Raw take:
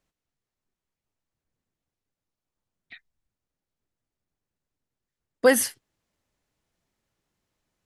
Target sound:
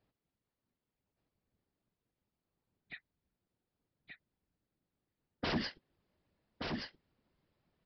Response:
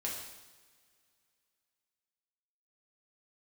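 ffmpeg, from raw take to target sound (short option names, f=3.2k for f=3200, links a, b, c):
-af "highpass=59,afftfilt=real='hypot(re,im)*cos(2*PI*random(0))':imag='hypot(re,im)*sin(2*PI*random(1))':win_size=512:overlap=0.75,alimiter=limit=-17.5dB:level=0:latency=1:release=133,aresample=11025,aeval=exprs='0.0188*(abs(mod(val(0)/0.0188+3,4)-2)-1)':c=same,aresample=44100,tiltshelf=f=770:g=4,aecho=1:1:1176:0.596,volume=5.5dB"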